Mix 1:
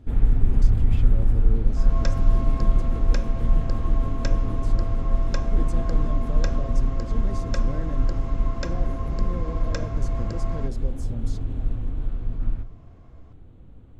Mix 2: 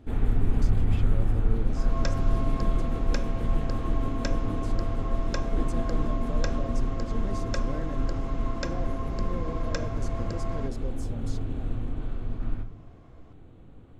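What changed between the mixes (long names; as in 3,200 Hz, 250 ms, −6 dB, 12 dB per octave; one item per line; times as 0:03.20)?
first sound: send +10.5 dB
master: add low-shelf EQ 130 Hz −11 dB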